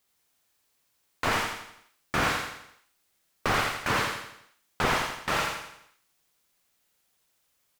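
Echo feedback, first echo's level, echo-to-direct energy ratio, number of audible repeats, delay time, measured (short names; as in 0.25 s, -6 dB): 47%, -4.0 dB, -3.0 dB, 5, 84 ms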